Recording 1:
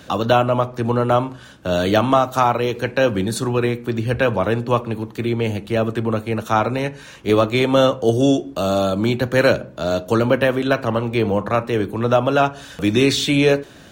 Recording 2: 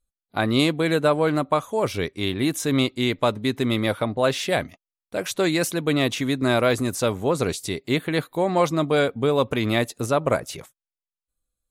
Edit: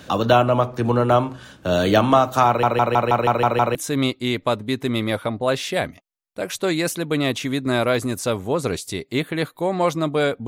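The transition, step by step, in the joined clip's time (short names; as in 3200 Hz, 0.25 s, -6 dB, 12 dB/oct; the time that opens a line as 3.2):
recording 1
2.47 stutter in place 0.16 s, 8 plays
3.75 switch to recording 2 from 2.51 s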